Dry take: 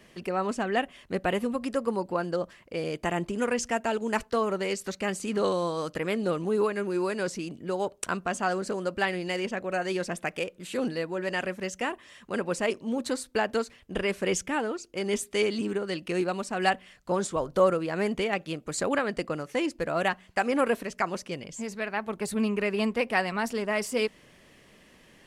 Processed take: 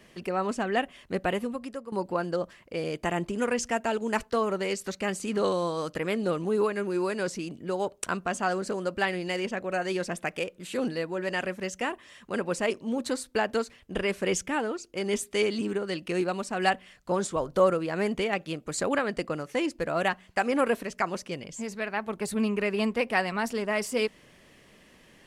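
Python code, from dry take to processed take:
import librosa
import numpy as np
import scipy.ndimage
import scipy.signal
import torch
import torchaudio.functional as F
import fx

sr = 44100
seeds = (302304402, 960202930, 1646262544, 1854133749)

y = fx.edit(x, sr, fx.fade_out_to(start_s=1.23, length_s=0.69, floor_db=-15.0), tone=tone)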